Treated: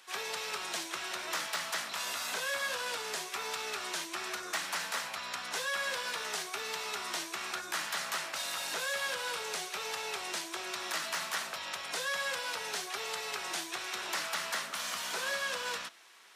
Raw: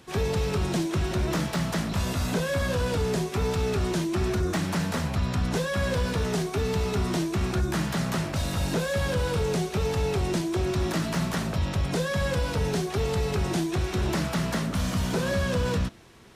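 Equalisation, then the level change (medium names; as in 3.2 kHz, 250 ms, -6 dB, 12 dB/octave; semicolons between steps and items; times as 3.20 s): high-pass 1.1 kHz 12 dB/octave; 0.0 dB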